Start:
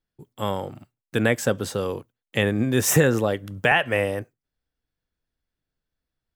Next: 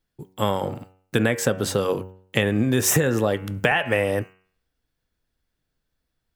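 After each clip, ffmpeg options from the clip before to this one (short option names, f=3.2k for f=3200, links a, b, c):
-af "bandreject=f=93.63:t=h:w=4,bandreject=f=187.26:t=h:w=4,bandreject=f=280.89:t=h:w=4,bandreject=f=374.52:t=h:w=4,bandreject=f=468.15:t=h:w=4,bandreject=f=561.78:t=h:w=4,bandreject=f=655.41:t=h:w=4,bandreject=f=749.04:t=h:w=4,bandreject=f=842.67:t=h:w=4,bandreject=f=936.3:t=h:w=4,bandreject=f=1.02993k:t=h:w=4,bandreject=f=1.12356k:t=h:w=4,bandreject=f=1.21719k:t=h:w=4,bandreject=f=1.31082k:t=h:w=4,bandreject=f=1.40445k:t=h:w=4,bandreject=f=1.49808k:t=h:w=4,bandreject=f=1.59171k:t=h:w=4,bandreject=f=1.68534k:t=h:w=4,bandreject=f=1.77897k:t=h:w=4,bandreject=f=1.8726k:t=h:w=4,bandreject=f=1.96623k:t=h:w=4,bandreject=f=2.05986k:t=h:w=4,bandreject=f=2.15349k:t=h:w=4,bandreject=f=2.24712k:t=h:w=4,bandreject=f=2.34075k:t=h:w=4,bandreject=f=2.43438k:t=h:w=4,bandreject=f=2.52801k:t=h:w=4,bandreject=f=2.62164k:t=h:w=4,bandreject=f=2.71527k:t=h:w=4,bandreject=f=2.8089k:t=h:w=4,bandreject=f=2.90253k:t=h:w=4,bandreject=f=2.99616k:t=h:w=4,acompressor=threshold=-23dB:ratio=6,volume=6.5dB"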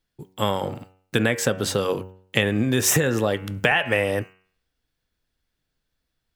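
-af "equalizer=f=3.5k:t=o:w=2.1:g=4,volume=-1dB"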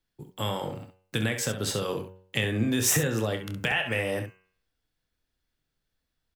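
-filter_complex "[0:a]acrossover=split=170|2300[a][b][c];[b]alimiter=limit=-17.5dB:level=0:latency=1:release=250[d];[a][d][c]amix=inputs=3:normalize=0,aecho=1:1:27|66:0.316|0.355,volume=-4dB"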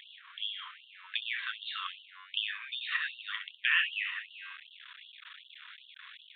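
-af "aeval=exprs='val(0)+0.5*0.0168*sgn(val(0))':c=same,aresample=8000,aresample=44100,afftfilt=real='re*gte(b*sr/1024,940*pow(2800/940,0.5+0.5*sin(2*PI*2.6*pts/sr)))':imag='im*gte(b*sr/1024,940*pow(2800/940,0.5+0.5*sin(2*PI*2.6*pts/sr)))':win_size=1024:overlap=0.75"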